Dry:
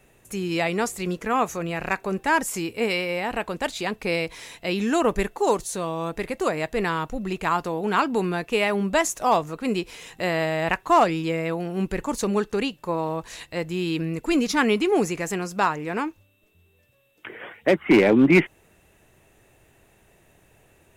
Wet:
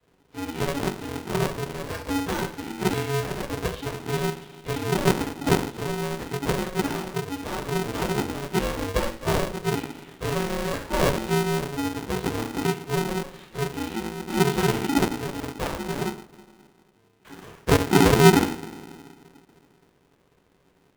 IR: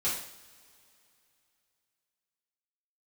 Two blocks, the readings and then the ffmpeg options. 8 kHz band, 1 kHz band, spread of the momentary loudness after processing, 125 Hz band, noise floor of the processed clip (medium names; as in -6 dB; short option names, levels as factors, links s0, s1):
0.0 dB, -4.0 dB, 10 LU, +5.0 dB, -63 dBFS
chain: -filter_complex "[0:a]highpass=f=250:t=q:w=0.5412,highpass=f=250:t=q:w=1.307,lowpass=f=3600:t=q:w=0.5176,lowpass=f=3600:t=q:w=0.7071,lowpass=f=3600:t=q:w=1.932,afreqshift=-380,equalizer=f=125:t=o:w=1:g=4,equalizer=f=500:t=o:w=1:g=-11,equalizer=f=1000:t=o:w=1:g=-5,equalizer=f=2000:t=o:w=1:g=-10,acrossover=split=130|940|1900[s0][s1][s2][s3];[s2]acrusher=samples=15:mix=1:aa=0.000001:lfo=1:lforange=15:lforate=0.28[s4];[s0][s1][s4][s3]amix=inputs=4:normalize=0[s5];[1:a]atrim=start_sample=2205,asetrate=52920,aresample=44100[s6];[s5][s6]afir=irnorm=-1:irlink=0,aeval=exprs='val(0)*sgn(sin(2*PI*280*n/s))':c=same,volume=0.596"